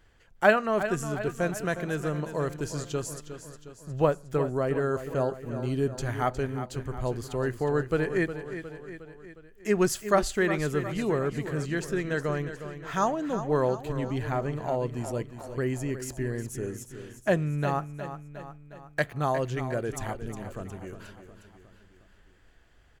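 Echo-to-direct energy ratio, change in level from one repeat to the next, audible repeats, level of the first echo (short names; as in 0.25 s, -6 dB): -9.5 dB, -5.0 dB, 4, -11.0 dB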